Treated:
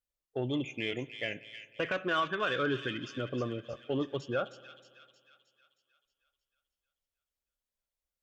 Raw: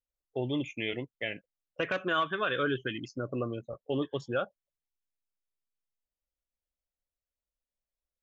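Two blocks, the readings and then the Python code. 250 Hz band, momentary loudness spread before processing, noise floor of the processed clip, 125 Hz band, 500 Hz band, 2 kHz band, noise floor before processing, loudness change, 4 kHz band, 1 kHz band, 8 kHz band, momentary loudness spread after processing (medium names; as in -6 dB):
-1.0 dB, 10 LU, under -85 dBFS, -0.5 dB, -1.0 dB, -1.0 dB, under -85 dBFS, -1.0 dB, 0.0 dB, -1.0 dB, no reading, 11 LU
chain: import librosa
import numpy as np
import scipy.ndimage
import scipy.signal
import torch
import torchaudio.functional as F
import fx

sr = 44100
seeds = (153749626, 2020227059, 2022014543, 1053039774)

y = fx.cheby_harmonics(x, sr, harmonics=(5,), levels_db=(-27,), full_scale_db=-17.0)
y = fx.echo_wet_highpass(y, sr, ms=313, feedback_pct=54, hz=2800.0, wet_db=-5.5)
y = fx.rev_spring(y, sr, rt60_s=2.0, pass_ms=(56,), chirp_ms=50, drr_db=19.0)
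y = F.gain(torch.from_numpy(y), -2.0).numpy()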